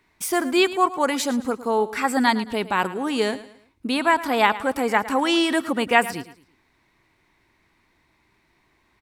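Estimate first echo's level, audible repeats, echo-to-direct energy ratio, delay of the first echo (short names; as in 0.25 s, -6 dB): -16.0 dB, 3, -15.5 dB, 0.11 s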